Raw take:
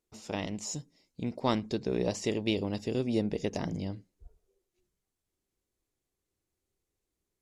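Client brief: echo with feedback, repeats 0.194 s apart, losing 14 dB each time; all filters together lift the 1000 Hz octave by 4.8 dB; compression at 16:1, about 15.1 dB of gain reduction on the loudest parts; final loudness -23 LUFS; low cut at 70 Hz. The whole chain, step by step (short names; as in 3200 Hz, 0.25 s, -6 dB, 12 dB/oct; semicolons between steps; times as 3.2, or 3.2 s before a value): HPF 70 Hz; bell 1000 Hz +6 dB; compressor 16:1, threshold -36 dBFS; feedback echo 0.194 s, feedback 20%, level -14 dB; gain +19 dB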